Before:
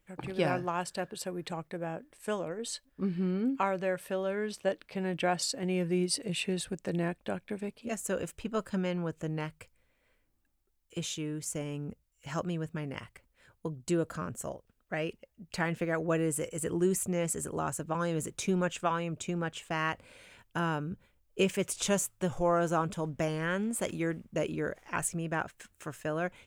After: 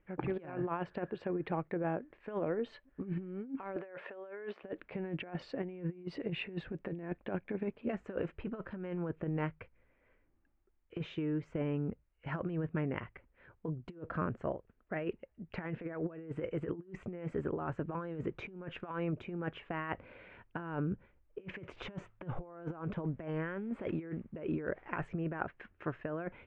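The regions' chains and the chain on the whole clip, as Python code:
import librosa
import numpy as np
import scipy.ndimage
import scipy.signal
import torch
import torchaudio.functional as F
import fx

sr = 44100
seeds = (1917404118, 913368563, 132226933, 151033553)

y = fx.chain(x, sr, fx.highpass(hz=510.0, slope=12),
    fx.over_compress(threshold_db=-47.0, ratio=-1.0),
    fx.high_shelf(hz=2800.0, db=-6.5), at=(3.76, 4.63))
y = scipy.signal.sosfilt(scipy.signal.butter(4, 2300.0, 'lowpass', fs=sr, output='sos'), y)
y = fx.peak_eq(y, sr, hz=360.0, db=4.5, octaves=0.57)
y = fx.over_compress(y, sr, threshold_db=-34.0, ratio=-0.5)
y = F.gain(torch.from_numpy(y), -2.5).numpy()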